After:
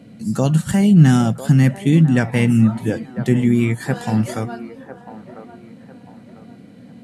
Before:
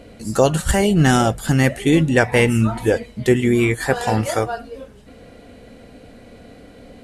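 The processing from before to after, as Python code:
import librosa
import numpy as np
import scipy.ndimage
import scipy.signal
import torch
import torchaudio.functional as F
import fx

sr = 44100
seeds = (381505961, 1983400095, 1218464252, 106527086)

p1 = scipy.signal.sosfilt(scipy.signal.butter(4, 120.0, 'highpass', fs=sr, output='sos'), x)
p2 = fx.low_shelf_res(p1, sr, hz=290.0, db=10.5, q=1.5)
p3 = p2 + fx.echo_wet_bandpass(p2, sr, ms=999, feedback_pct=34, hz=730.0, wet_db=-10.5, dry=0)
y = p3 * 10.0 ** (-6.0 / 20.0)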